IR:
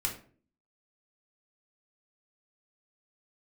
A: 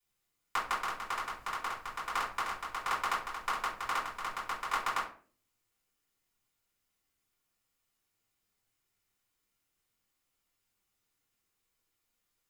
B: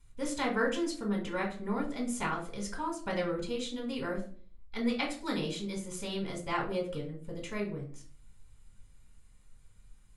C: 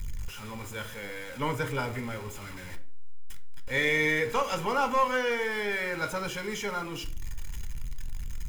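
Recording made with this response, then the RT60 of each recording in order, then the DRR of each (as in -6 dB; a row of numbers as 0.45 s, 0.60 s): B; 0.45 s, 0.45 s, 0.45 s; -9.0 dB, -1.0 dB, 7.5 dB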